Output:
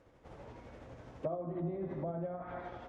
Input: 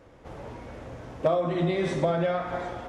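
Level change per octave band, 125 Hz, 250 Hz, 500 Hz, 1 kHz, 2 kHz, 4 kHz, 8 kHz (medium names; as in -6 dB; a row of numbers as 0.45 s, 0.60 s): -10.5 dB, -11.0 dB, -13.5 dB, -13.5 dB, -18.0 dB, under -20 dB, no reading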